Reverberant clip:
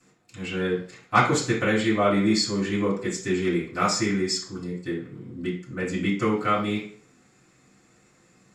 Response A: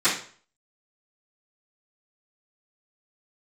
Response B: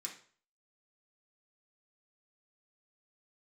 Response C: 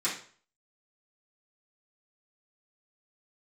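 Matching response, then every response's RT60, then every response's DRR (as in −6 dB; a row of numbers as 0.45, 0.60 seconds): C; 0.45, 0.45, 0.45 seconds; −21.0, −2.5, −11.5 decibels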